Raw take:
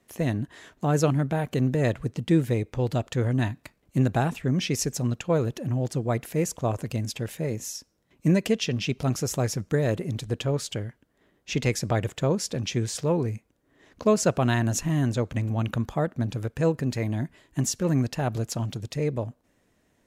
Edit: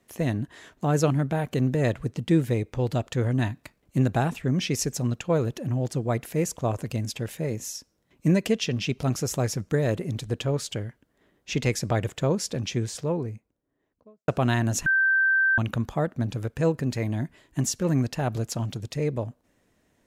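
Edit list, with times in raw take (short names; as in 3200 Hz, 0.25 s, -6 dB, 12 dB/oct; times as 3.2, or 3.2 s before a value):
12.49–14.28 studio fade out
14.86–15.58 bleep 1560 Hz -18 dBFS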